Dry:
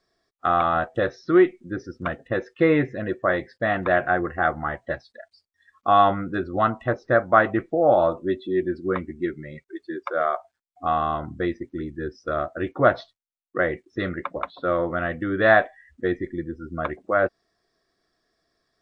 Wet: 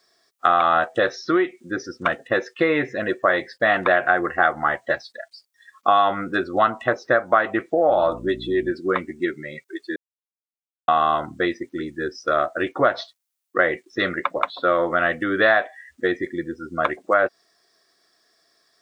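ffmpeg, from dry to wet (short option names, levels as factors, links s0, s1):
-filter_complex "[0:a]asettb=1/sr,asplit=3[s0][s1][s2];[s0]atrim=end=7.884[s3];[s1]atrim=start=7.88:end=8.72,asetpts=PTS-STARTPTS,afade=t=in:d=0.004:c=qsin,afade=t=out:st=0.836:d=0.004:c=qsin,aeval=exprs='val(0)+0.0316*(sin(2*PI*60*n/s)+sin(2*PI*2*60*n/s)/2+sin(2*PI*3*60*n/s)/3+sin(2*PI*4*60*n/s)/4+sin(2*PI*5*60*n/s)/5)':c=same[s4];[s2]atrim=start=8.716[s5];[s3][s4]acrossfade=d=0.004:c1=hsin:c2=qsin[s6];[s6][s5]acrossfade=d=0.004:c1=qsin:c2=hsin,asplit=3[s7][s8][s9];[s7]atrim=end=9.96,asetpts=PTS-STARTPTS,afade=t=out:st=9.956:d=0.004:c=hsin[s10];[s8]atrim=start=9.96:end=10.88,asetpts=PTS-STARTPTS,volume=0[s11];[s9]atrim=start=10.88,asetpts=PTS-STARTPTS,afade=t=in:d=0.004:c=hsin[s12];[s10][s11][s12]concat=n=3:v=0:a=1,highshelf=f=4500:g=9,acompressor=threshold=0.112:ratio=10,highpass=f=530:p=1,volume=2.51"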